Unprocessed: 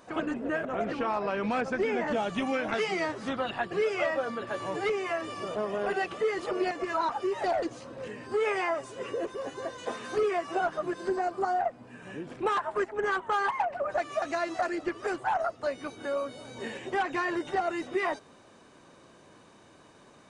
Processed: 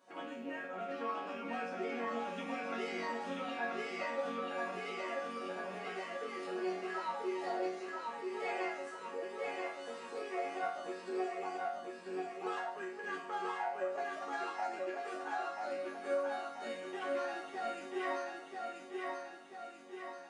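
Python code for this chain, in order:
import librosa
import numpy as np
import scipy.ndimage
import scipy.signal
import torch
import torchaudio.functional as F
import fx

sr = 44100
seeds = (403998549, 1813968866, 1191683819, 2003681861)

p1 = fx.rattle_buzz(x, sr, strikes_db=-41.0, level_db=-35.0)
p2 = scipy.signal.sosfilt(scipy.signal.butter(2, 210.0, 'highpass', fs=sr, output='sos'), p1)
p3 = fx.resonator_bank(p2, sr, root=54, chord='major', decay_s=0.57)
p4 = p3 + fx.echo_feedback(p3, sr, ms=985, feedback_pct=53, wet_db=-3, dry=0)
y = F.gain(torch.from_numpy(p4), 9.5).numpy()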